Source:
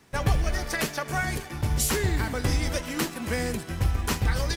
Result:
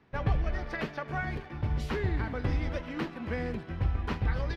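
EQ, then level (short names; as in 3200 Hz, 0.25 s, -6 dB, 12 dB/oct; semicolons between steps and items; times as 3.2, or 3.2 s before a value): air absorption 330 m; -4.0 dB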